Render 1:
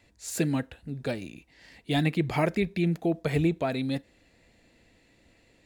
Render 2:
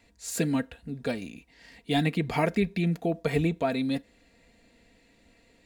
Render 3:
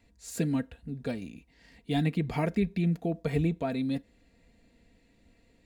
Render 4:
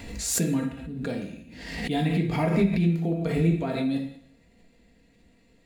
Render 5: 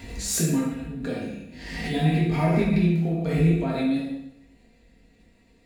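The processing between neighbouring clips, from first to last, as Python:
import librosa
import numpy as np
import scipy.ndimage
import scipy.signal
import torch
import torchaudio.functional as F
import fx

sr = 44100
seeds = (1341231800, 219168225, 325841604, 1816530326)

y1 = x + 0.43 * np.pad(x, (int(4.3 * sr / 1000.0), 0))[:len(x)]
y2 = fx.low_shelf(y1, sr, hz=300.0, db=9.0)
y2 = F.gain(torch.from_numpy(y2), -7.0).numpy()
y3 = fx.rev_plate(y2, sr, seeds[0], rt60_s=0.7, hf_ratio=0.95, predelay_ms=0, drr_db=0.5)
y3 = fx.pre_swell(y3, sr, db_per_s=49.0)
y4 = fx.rev_plate(y3, sr, seeds[1], rt60_s=0.73, hf_ratio=0.8, predelay_ms=0, drr_db=-2.5)
y4 = F.gain(torch.from_numpy(y4), -3.0).numpy()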